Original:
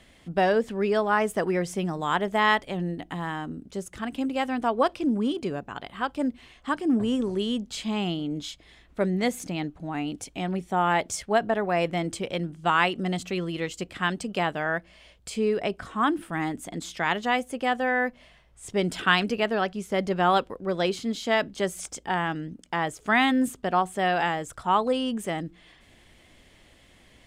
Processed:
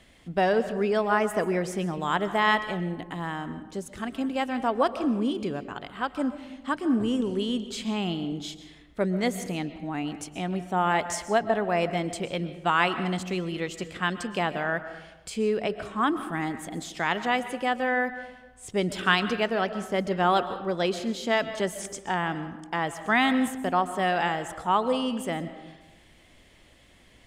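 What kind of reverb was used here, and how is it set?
algorithmic reverb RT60 1.1 s, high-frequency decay 0.5×, pre-delay 90 ms, DRR 11.5 dB; trim -1 dB

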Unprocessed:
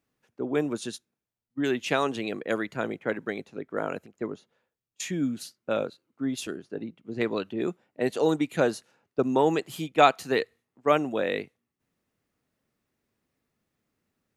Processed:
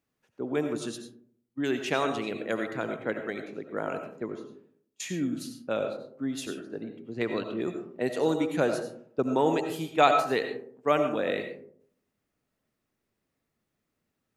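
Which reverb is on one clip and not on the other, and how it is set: algorithmic reverb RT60 0.62 s, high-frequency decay 0.35×, pre-delay 50 ms, DRR 6 dB; trim -2.5 dB

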